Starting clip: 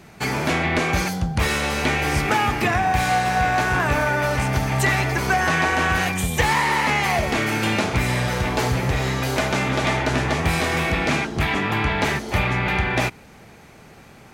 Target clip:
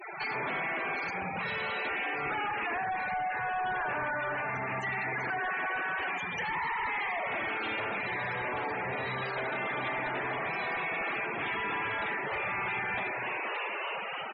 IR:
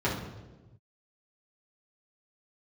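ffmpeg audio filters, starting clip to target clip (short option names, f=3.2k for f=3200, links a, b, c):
-filter_complex "[0:a]highpass=70,bandreject=f=60:t=h:w=6,bandreject=f=120:t=h:w=6,bandreject=f=180:t=h:w=6,bandreject=f=240:t=h:w=6,asplit=8[a][b][c][d][e][f][g][h];[b]adelay=289,afreqshift=110,volume=-14.5dB[i];[c]adelay=578,afreqshift=220,volume=-18.7dB[j];[d]adelay=867,afreqshift=330,volume=-22.8dB[k];[e]adelay=1156,afreqshift=440,volume=-27dB[l];[f]adelay=1445,afreqshift=550,volume=-31.1dB[m];[g]adelay=1734,afreqshift=660,volume=-35.3dB[n];[h]adelay=2023,afreqshift=770,volume=-39.4dB[o];[a][i][j][k][l][m][n][o]amix=inputs=8:normalize=0,acompressor=threshold=-36dB:ratio=4,lowshelf=f=310:g=-8.5,asplit=2[p][q];[1:a]atrim=start_sample=2205,afade=t=out:st=0.35:d=0.01,atrim=end_sample=15876,adelay=84[r];[q][r]afir=irnorm=-1:irlink=0,volume=-16dB[s];[p][s]amix=inputs=2:normalize=0,asplit=2[t][u];[u]highpass=f=720:p=1,volume=25dB,asoftclip=type=tanh:threshold=-21.5dB[v];[t][v]amix=inputs=2:normalize=0,lowpass=f=7.8k:p=1,volume=-6dB,highshelf=f=9.3k:g=-11.5,afftfilt=real='re*gte(hypot(re,im),0.0447)':imag='im*gte(hypot(re,im),0.0447)':win_size=1024:overlap=0.75,volume=-4dB" -ar 48000 -c:a libopus -b:a 128k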